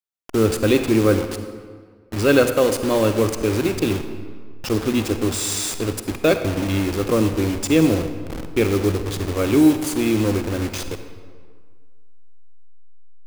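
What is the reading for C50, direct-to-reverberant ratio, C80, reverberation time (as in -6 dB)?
8.5 dB, 8.0 dB, 10.0 dB, 1.8 s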